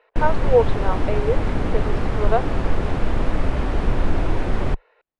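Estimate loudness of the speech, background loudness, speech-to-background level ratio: -24.5 LUFS, -25.0 LUFS, 0.5 dB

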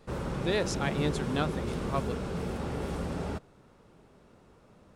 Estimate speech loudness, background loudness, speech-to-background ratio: -33.5 LUFS, -34.5 LUFS, 1.0 dB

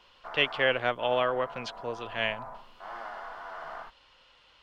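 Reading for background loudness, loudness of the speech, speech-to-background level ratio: -43.0 LUFS, -29.5 LUFS, 13.5 dB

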